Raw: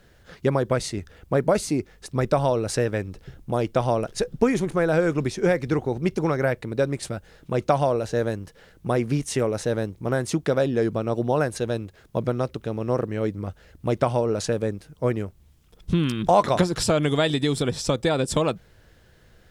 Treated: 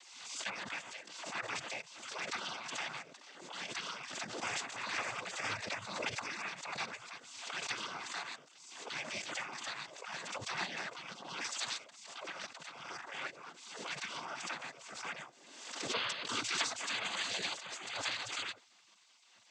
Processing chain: spectral gate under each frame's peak -25 dB weak; 11.44–11.84 tone controls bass -7 dB, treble +12 dB; 17.54–18.03 negative-ratio compressor -47 dBFS, ratio -0.5; noise vocoder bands 16; backwards sustainer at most 49 dB/s; gain +2 dB

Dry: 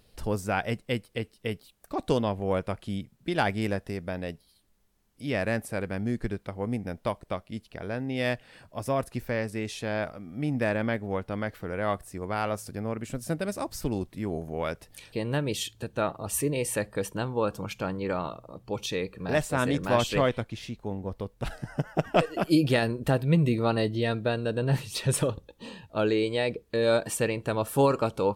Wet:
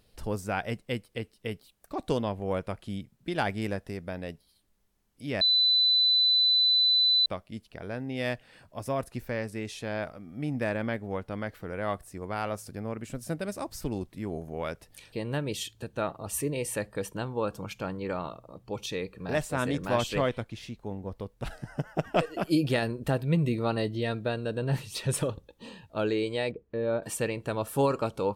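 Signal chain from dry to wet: 5.41–7.26 bleep 4000 Hz -16.5 dBFS; 26.51–27.03 tape spacing loss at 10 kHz 45 dB; gain -3 dB

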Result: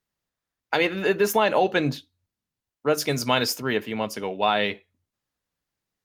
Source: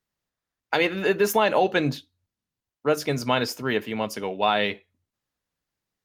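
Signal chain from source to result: 2.98–3.6 high shelf 3500 Hz +8 dB

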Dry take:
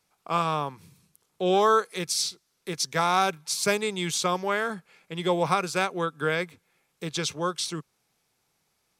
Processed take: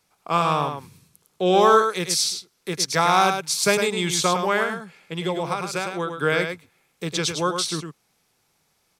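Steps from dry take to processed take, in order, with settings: 4.63–6.13 compressor 4:1, threshold -28 dBFS, peak gain reduction 9 dB; on a send: echo 0.105 s -6.5 dB; on the sum: gain +4.5 dB

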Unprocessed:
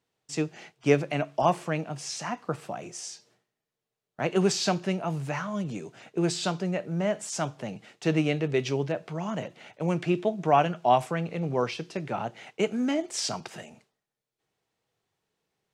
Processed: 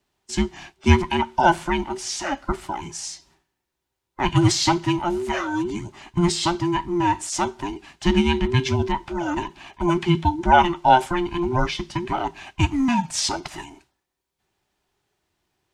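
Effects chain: band inversion scrambler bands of 500 Hz; dynamic EQ 3400 Hz, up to +3 dB, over -49 dBFS, Q 3.7; gain +6.5 dB

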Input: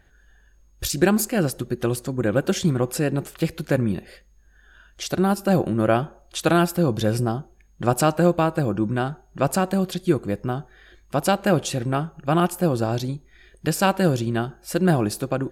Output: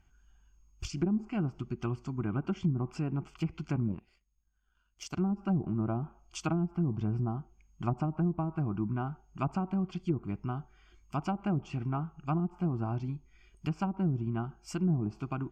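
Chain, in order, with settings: fixed phaser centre 2600 Hz, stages 8; 3.88–5.17 power-law curve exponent 1.4; treble ducked by the level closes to 360 Hz, closed at -17.5 dBFS; gain -6.5 dB

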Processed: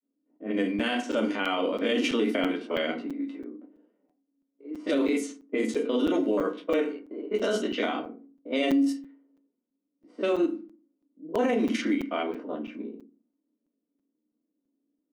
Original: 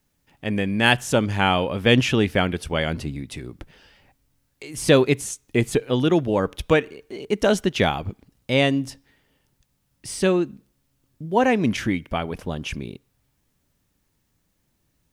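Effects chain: stepped spectrum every 50 ms; grains 0.1 s, grains 20/s, spray 13 ms, pitch spread up and down by 0 st; elliptic high-pass 220 Hz, stop band 40 dB; notch comb 840 Hz; FDN reverb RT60 0.37 s, low-frequency decay 1.55×, high-frequency decay 0.75×, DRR 3.5 dB; limiter -17 dBFS, peak gain reduction 14 dB; low-pass opened by the level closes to 350 Hz, open at -21.5 dBFS; crackling interface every 0.33 s, samples 256, zero, from 0.79

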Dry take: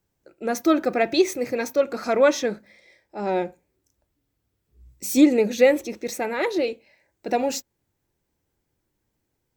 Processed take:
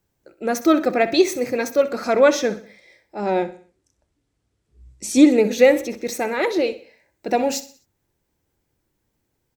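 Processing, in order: 3.45–5.26 LPF 10000 Hz 24 dB/oct; on a send: feedback echo 63 ms, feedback 43%, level -15 dB; on the sum: gain +3 dB

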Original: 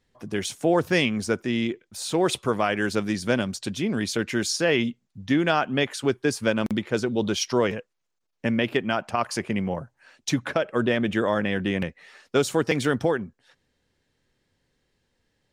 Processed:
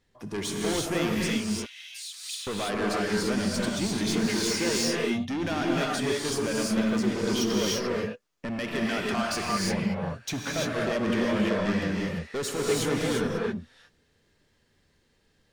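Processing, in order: 8.56–9.71 bell 2700 Hz +5.5 dB 2.2 oct; limiter -15 dBFS, peak gain reduction 8.5 dB; soft clip -27.5 dBFS, distortion -8 dB; 1.3–2.47 ladder high-pass 2100 Hz, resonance 25%; non-linear reverb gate 0.37 s rising, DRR -3.5 dB

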